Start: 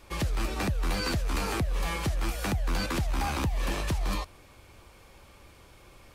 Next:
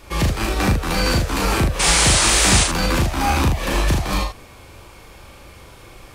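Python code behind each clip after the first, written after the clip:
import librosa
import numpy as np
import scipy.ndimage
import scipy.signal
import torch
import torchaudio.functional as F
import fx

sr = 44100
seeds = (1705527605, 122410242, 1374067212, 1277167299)

y = fx.spec_paint(x, sr, seeds[0], shape='noise', start_s=1.79, length_s=0.85, low_hz=290.0, high_hz=10000.0, level_db=-28.0)
y = fx.room_early_taps(y, sr, ms=(37, 78), db=(-3.0, -6.0))
y = F.gain(torch.from_numpy(y), 9.0).numpy()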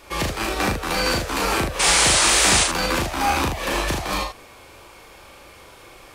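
y = fx.bass_treble(x, sr, bass_db=-10, treble_db=-1)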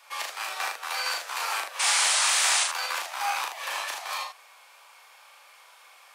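y = scipy.signal.sosfilt(scipy.signal.butter(4, 750.0, 'highpass', fs=sr, output='sos'), x)
y = F.gain(torch.from_numpy(y), -6.0).numpy()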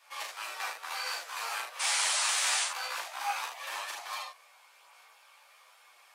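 y = fx.chorus_voices(x, sr, voices=2, hz=0.5, base_ms=13, depth_ms=4.8, mix_pct=50)
y = F.gain(torch.from_numpy(y), -3.0).numpy()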